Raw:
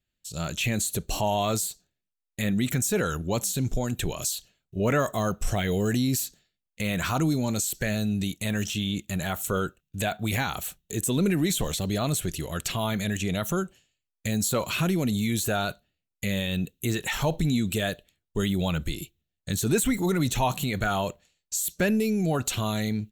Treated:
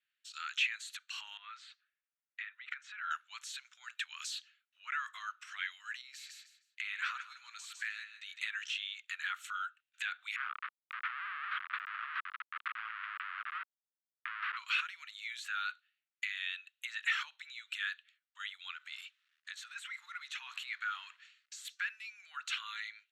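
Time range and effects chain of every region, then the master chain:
1.37–3.11 s: low-pass 2.6 kHz + compression 12:1, threshold -32 dBFS
6.01–8.41 s: feedback delay 155 ms, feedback 23%, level -10 dB + compression 2.5:1, threshold -33 dBFS
10.36–14.57 s: block-companded coder 5-bit + Schmitt trigger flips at -26.5 dBFS + cabinet simulation 430–2700 Hz, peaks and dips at 650 Hz +7 dB, 1.2 kHz +5 dB, 2.3 kHz -3 dB
18.73–21.65 s: companding laws mixed up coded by mu + compression 2.5:1, threshold -35 dBFS
whole clip: low-pass 2.5 kHz 12 dB/octave; compression 4:1, threshold -32 dBFS; steep high-pass 1.3 kHz 48 dB/octave; trim +5 dB

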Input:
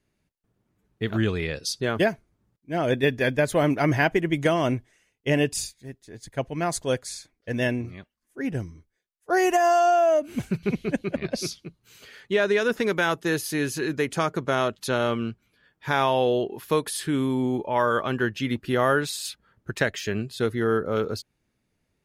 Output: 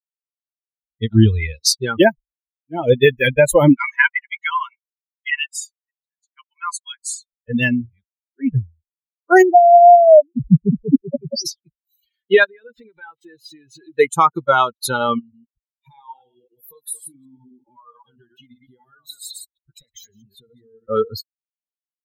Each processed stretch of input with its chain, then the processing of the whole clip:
3.76–7.01 s: steep high-pass 960 Hz 72 dB/octave + treble shelf 5.8 kHz -12 dB
9.42–11.46 s: spectral contrast enhancement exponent 3 + comb 6.7 ms, depth 44%
12.44–13.99 s: zero-crossing glitches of -21 dBFS + low-pass 3 kHz + compression 5:1, threshold -32 dBFS
15.19–20.89 s: chunks repeated in reverse 129 ms, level -4.5 dB + compression 4:1, threshold -35 dBFS + Shepard-style phaser falling 1.5 Hz
whole clip: expander on every frequency bin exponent 3; dynamic bell 3.6 kHz, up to -3 dB, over -50 dBFS, Q 1.3; loudness maximiser +19.5 dB; trim -1 dB

